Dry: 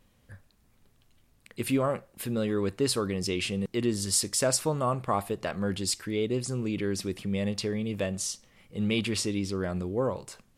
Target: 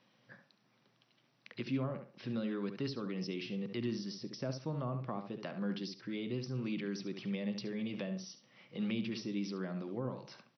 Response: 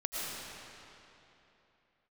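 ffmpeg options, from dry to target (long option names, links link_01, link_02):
-filter_complex "[0:a]lowshelf=frequency=250:gain=-8,bandreject=frequency=440:width=12,asplit=2[link_01][link_02];[link_02]adelay=69,lowpass=frequency=2500:poles=1,volume=-8.5dB,asplit=2[link_03][link_04];[link_04]adelay=69,lowpass=frequency=2500:poles=1,volume=0.18,asplit=2[link_05][link_06];[link_06]adelay=69,lowpass=frequency=2500:poles=1,volume=0.18[link_07];[link_01][link_03][link_05][link_07]amix=inputs=4:normalize=0,acrossover=split=490[link_08][link_09];[link_09]acompressor=threshold=-45dB:ratio=5[link_10];[link_08][link_10]amix=inputs=2:normalize=0,afftfilt=real='re*between(b*sr/4096,110,6000)':imag='im*between(b*sr/4096,110,6000)':win_size=4096:overlap=0.75,acrossover=split=260|730|2400[link_11][link_12][link_13][link_14];[link_12]acompressor=threshold=-46dB:ratio=6[link_15];[link_11][link_15][link_13][link_14]amix=inputs=4:normalize=0"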